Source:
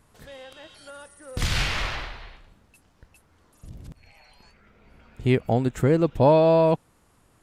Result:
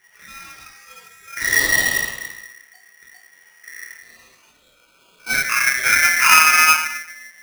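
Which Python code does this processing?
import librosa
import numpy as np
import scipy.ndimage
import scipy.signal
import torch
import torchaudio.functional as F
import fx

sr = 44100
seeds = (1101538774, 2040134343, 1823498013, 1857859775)

y = fx.band_shelf(x, sr, hz=1100.0, db=-8.5, octaves=1.3, at=(0.57, 1.44))
y = fx.steep_highpass(y, sr, hz=340.0, slope=96, at=(3.84, 5.33), fade=0.02)
y = fx.spec_topn(y, sr, count=64)
y = fx.room_shoebox(y, sr, seeds[0], volume_m3=130.0, walls='mixed', distance_m=1.5)
y = y * np.sign(np.sin(2.0 * np.pi * 1900.0 * np.arange(len(y)) / sr))
y = F.gain(torch.from_numpy(y), -2.5).numpy()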